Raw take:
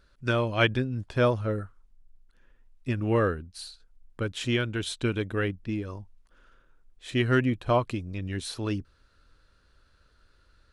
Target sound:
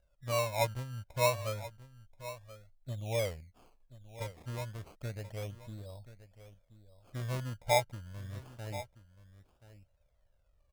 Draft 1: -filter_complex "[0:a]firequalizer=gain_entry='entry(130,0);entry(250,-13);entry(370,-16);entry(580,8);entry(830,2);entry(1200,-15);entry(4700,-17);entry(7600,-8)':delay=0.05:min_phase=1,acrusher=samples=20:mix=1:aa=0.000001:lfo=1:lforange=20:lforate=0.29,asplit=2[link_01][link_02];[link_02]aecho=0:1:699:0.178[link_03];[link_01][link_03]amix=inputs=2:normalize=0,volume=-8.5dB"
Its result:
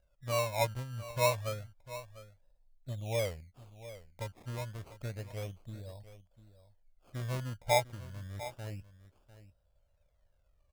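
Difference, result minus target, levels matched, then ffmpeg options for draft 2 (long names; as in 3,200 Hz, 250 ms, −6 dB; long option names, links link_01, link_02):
echo 331 ms early
-filter_complex "[0:a]firequalizer=gain_entry='entry(130,0);entry(250,-13);entry(370,-16);entry(580,8);entry(830,2);entry(1200,-15);entry(4700,-17);entry(7600,-8)':delay=0.05:min_phase=1,acrusher=samples=20:mix=1:aa=0.000001:lfo=1:lforange=20:lforate=0.29,asplit=2[link_01][link_02];[link_02]aecho=0:1:1030:0.178[link_03];[link_01][link_03]amix=inputs=2:normalize=0,volume=-8.5dB"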